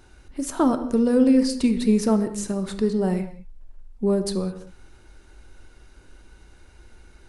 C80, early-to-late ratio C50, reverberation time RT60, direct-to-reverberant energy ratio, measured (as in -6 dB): 12.5 dB, 11.0 dB, no single decay rate, 8.0 dB